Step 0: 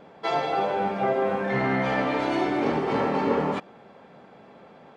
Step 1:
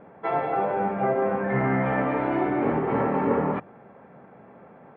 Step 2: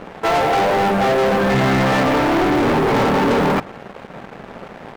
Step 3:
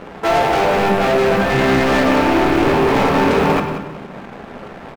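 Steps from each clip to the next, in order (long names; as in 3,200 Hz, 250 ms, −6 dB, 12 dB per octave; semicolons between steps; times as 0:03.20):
low-pass filter 2,100 Hz 24 dB per octave; parametric band 110 Hz +5.5 dB 1.3 octaves; mains-hum notches 50/100/150 Hz
leveller curve on the samples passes 5; level −1.5 dB
loose part that buzzes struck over −26 dBFS, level −20 dBFS; repeating echo 183 ms, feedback 25%, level −11 dB; on a send at −5.5 dB: convolution reverb RT60 0.95 s, pre-delay 12 ms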